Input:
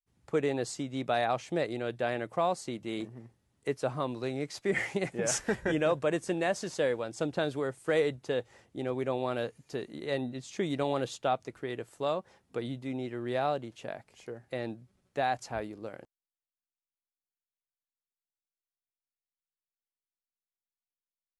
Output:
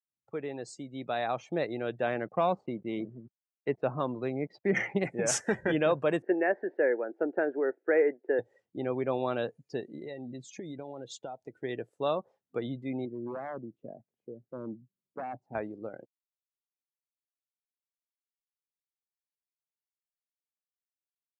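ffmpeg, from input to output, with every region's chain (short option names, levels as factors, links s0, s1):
-filter_complex "[0:a]asettb=1/sr,asplit=3[s0][s1][s2];[s0]atrim=end=2.074[s3];[s1]atrim=start=2.07:end=5.03,asetpts=PTS-STARTPTS,afade=t=in:d=0.004:c=qsin,afade=t=out:st=2.956:d=0.004:c=qsin,aeval=exprs='val(0)*gte(abs(val(0)),0.00266)':c=same,equalizer=f=190:w=5.7:g=5,adynamicsmooth=sensitivity=7.5:basefreq=1800[s4];[s2]atrim=start=5.026[s5];[s3][s4]acrossfade=d=0.004:c1=hsin:c2=qsin[s6];[s6][s5]acrossfade=d=0.004:c1=qsin:c2=hsin,asettb=1/sr,asplit=3[s7][s8][s9];[s7]atrim=end=6.224[s10];[s8]atrim=start=6.22:end=8.39,asetpts=PTS-STARTPTS,afade=t=in:d=0.004:c=qsin,afade=t=out:st=2.166:d=0.004:c=qsin,acrusher=bits=6:mode=log:mix=0:aa=0.000001,highpass=f=270:w=0.5412,highpass=f=270:w=1.3066,equalizer=f=380:t=q:w=4:g=6,equalizer=f=1100:t=q:w=4:g=-10,equalizer=f=1700:t=q:w=4:g=5,lowpass=f=2100:w=0.5412,lowpass=f=2100:w=1.3066[s11];[s9]atrim=start=8.386[s12];[s10][s11]acrossfade=d=0.004:c1=hsin:c2=qsin[s13];[s13][s12]acrossfade=d=0.004:c1=qsin:c2=hsin,asettb=1/sr,asplit=3[s14][s15][s16];[s14]atrim=end=9.804[s17];[s15]atrim=start=9.8:end=11.64,asetpts=PTS-STARTPTS,afade=t=in:d=0.004:c=qsin,afade=t=out:st=1.836:d=0.004:c=qsin,bandreject=f=1200:w=5.8,acompressor=threshold=0.0141:ratio=16:attack=3.2:release=140:knee=1:detection=peak[s18];[s16]atrim=start=11.636[s19];[s17][s18]acrossfade=d=0.004:c1=hsin:c2=qsin[s20];[s20][s19]acrossfade=d=0.004:c1=qsin:c2=hsin,asettb=1/sr,asplit=3[s21][s22][s23];[s21]atrim=end=13.054[s24];[s22]atrim=start=13.05:end=15.55,asetpts=PTS-STARTPTS,afade=t=in:d=0.004:c=qsin,afade=t=out:st=2.496:d=0.004:c=qsin,bandpass=f=220:t=q:w=0.84,aeval=exprs='0.0237*(abs(mod(val(0)/0.0237+3,4)-2)-1)':c=same[s25];[s23]atrim=start=15.546[s26];[s24][s25]acrossfade=d=0.004:c1=hsin:c2=qsin[s27];[s27][s26]acrossfade=d=0.004:c1=qsin:c2=hsin,highpass=110,afftdn=nr=24:nf=-46,dynaudnorm=f=380:g=7:m=2.99,volume=0.398"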